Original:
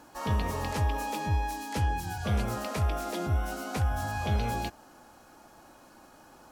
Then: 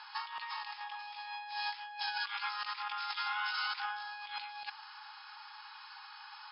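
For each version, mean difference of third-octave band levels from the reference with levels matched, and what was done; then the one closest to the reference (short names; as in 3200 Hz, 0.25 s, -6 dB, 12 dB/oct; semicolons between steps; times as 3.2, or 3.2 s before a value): 20.5 dB: FFT band-pass 790–5300 Hz; tilt +4 dB/oct; negative-ratio compressor -40 dBFS, ratio -0.5; gain +1 dB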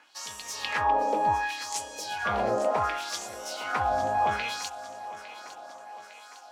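8.5 dB: in parallel at +2.5 dB: crossover distortion -48 dBFS; on the sum: LFO band-pass sine 0.68 Hz 540–7700 Hz; thinning echo 0.856 s, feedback 62%, high-pass 280 Hz, level -14 dB; gain +7.5 dB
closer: second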